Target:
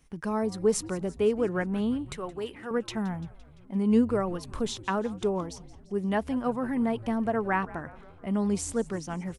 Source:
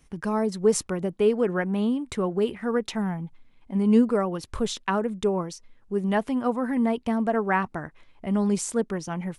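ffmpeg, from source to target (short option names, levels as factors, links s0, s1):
-filter_complex "[0:a]asettb=1/sr,asplit=3[s0][s1][s2];[s0]atrim=end=2.134[s3];[s1]atrim=start=2.13:end=2.71,asetpts=PTS-STARTPTS,afade=t=in:d=0.004:c=qsin,afade=t=out:st=0.576:d=0.004:c=qsin,highpass=f=790:p=1[s4];[s2]atrim=start=2.706[s5];[s3][s4]acrossfade=d=0.004:c1=hsin:c2=qsin[s6];[s6][s5]acrossfade=d=0.004:c1=qsin:c2=hsin,asplit=7[s7][s8][s9][s10][s11][s12][s13];[s8]adelay=171,afreqshift=-120,volume=0.112[s14];[s9]adelay=342,afreqshift=-240,volume=0.0716[s15];[s10]adelay=513,afreqshift=-360,volume=0.0457[s16];[s11]adelay=684,afreqshift=-480,volume=0.0295[s17];[s12]adelay=855,afreqshift=-600,volume=0.0188[s18];[s13]adelay=1026,afreqshift=-720,volume=0.012[s19];[s7][s14][s15][s16][s17][s18][s19]amix=inputs=7:normalize=0,volume=0.668"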